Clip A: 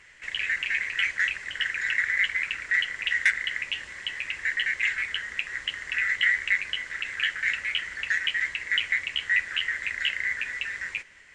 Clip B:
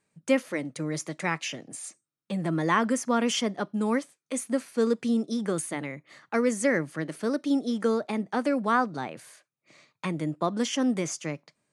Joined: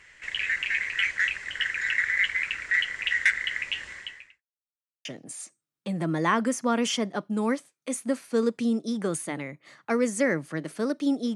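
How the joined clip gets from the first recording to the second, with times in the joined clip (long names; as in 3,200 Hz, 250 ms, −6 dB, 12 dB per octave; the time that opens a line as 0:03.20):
clip A
0:03.92–0:04.43: fade out quadratic
0:04.43–0:05.05: silence
0:05.05: continue with clip B from 0:01.49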